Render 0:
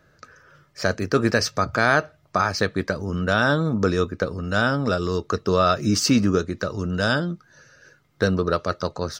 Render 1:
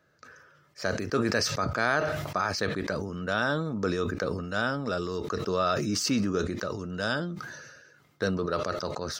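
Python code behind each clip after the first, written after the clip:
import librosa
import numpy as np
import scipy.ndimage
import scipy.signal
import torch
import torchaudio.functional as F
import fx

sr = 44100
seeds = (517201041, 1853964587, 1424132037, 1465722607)

y = fx.highpass(x, sr, hz=160.0, slope=6)
y = fx.sustainer(y, sr, db_per_s=38.0)
y = y * librosa.db_to_amplitude(-7.5)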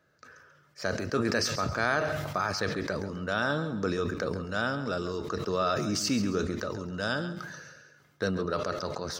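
y = fx.echo_feedback(x, sr, ms=136, feedback_pct=33, wet_db=-12.0)
y = y * librosa.db_to_amplitude(-1.5)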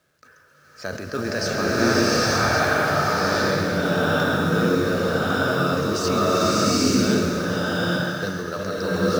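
y = fx.quant_companded(x, sr, bits=6)
y = fx.rev_bloom(y, sr, seeds[0], attack_ms=850, drr_db=-9.0)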